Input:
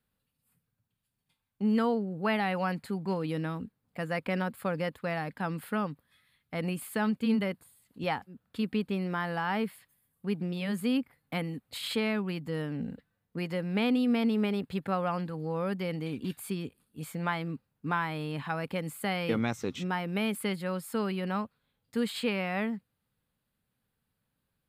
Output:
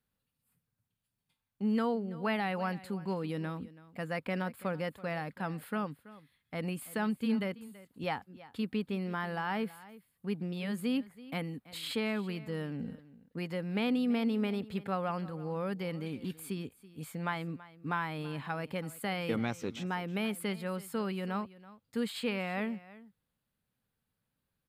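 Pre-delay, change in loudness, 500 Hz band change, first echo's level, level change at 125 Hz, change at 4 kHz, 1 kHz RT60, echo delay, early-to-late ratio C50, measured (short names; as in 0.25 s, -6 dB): none, -3.5 dB, -3.5 dB, -18.5 dB, -3.5 dB, -3.5 dB, none, 0.33 s, none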